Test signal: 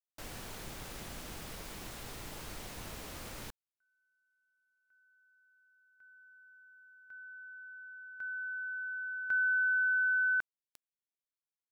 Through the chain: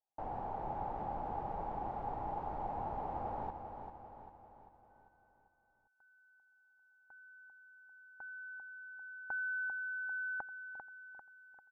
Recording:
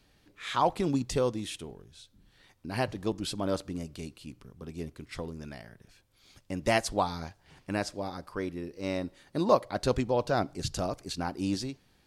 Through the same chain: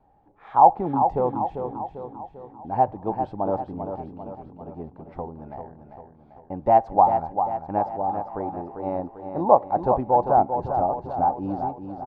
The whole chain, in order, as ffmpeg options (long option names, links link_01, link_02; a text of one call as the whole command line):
ffmpeg -i in.wav -af "lowpass=frequency=820:width_type=q:width=9.5,aecho=1:1:395|790|1185|1580|1975|2370:0.422|0.215|0.11|0.0559|0.0285|0.0145" out.wav